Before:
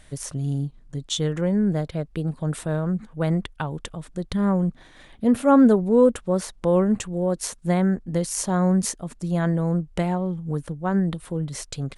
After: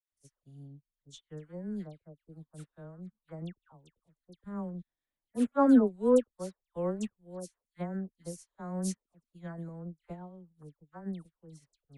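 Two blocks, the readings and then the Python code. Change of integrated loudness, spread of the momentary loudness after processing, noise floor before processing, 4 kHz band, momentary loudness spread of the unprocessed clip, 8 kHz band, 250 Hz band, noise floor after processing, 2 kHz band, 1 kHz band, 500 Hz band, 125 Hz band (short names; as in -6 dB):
-8.5 dB, 23 LU, -50 dBFS, under -20 dB, 13 LU, -18.0 dB, -10.5 dB, under -85 dBFS, -16.0 dB, -11.0 dB, -10.5 dB, -18.5 dB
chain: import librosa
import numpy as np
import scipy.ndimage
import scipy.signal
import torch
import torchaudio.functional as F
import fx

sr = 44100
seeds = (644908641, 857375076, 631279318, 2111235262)

y = fx.dispersion(x, sr, late='lows', ms=123.0, hz=1600.0)
y = fx.upward_expand(y, sr, threshold_db=-39.0, expansion=2.5)
y = F.gain(torch.from_numpy(y), -5.0).numpy()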